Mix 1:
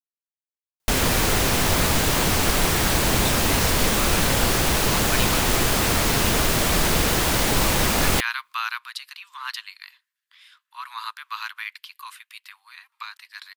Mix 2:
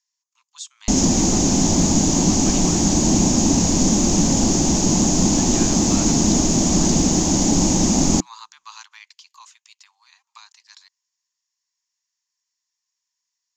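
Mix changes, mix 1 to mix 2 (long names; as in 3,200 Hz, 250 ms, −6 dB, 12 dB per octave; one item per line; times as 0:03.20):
speech: entry −2.65 s
master: add drawn EQ curve 130 Hz 0 dB, 180 Hz +11 dB, 310 Hz +11 dB, 450 Hz −4 dB, 810 Hz +1 dB, 1,400 Hz −15 dB, 2,200 Hz −12 dB, 4,000 Hz −6 dB, 6,800 Hz +13 dB, 9,700 Hz −27 dB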